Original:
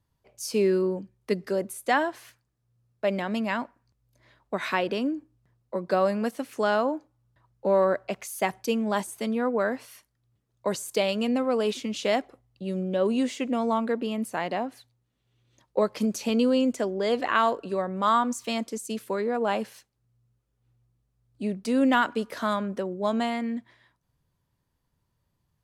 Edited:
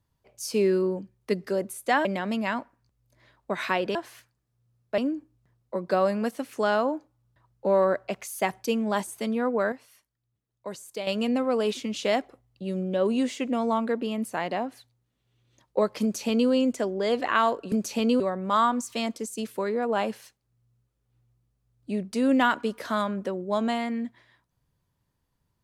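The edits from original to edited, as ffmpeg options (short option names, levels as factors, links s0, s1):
-filter_complex "[0:a]asplit=8[s0][s1][s2][s3][s4][s5][s6][s7];[s0]atrim=end=2.052[s8];[s1]atrim=start=3.078:end=4.982[s9];[s2]atrim=start=2.048:end=3.082[s10];[s3]atrim=start=4.978:end=9.722[s11];[s4]atrim=start=9.718:end=11.072,asetpts=PTS-STARTPTS,volume=0.355[s12];[s5]atrim=start=11.068:end=17.722[s13];[s6]atrim=start=16.018:end=16.502[s14];[s7]atrim=start=17.718[s15];[s8][s9]acrossfade=d=0.004:c1=hsin:c2=hsin[s16];[s16][s10]acrossfade=d=0.004:c1=hsin:c2=hsin[s17];[s17][s11]acrossfade=d=0.004:c1=hsin:c2=hsin[s18];[s18][s12]acrossfade=d=0.004:c1=hsin:c2=hsin[s19];[s19][s13]acrossfade=d=0.004:c1=hsin:c2=hsin[s20];[s20][s14]acrossfade=d=0.004:c1=hsin:c2=hsin[s21];[s21][s15]acrossfade=d=0.004:c1=hsin:c2=hsin"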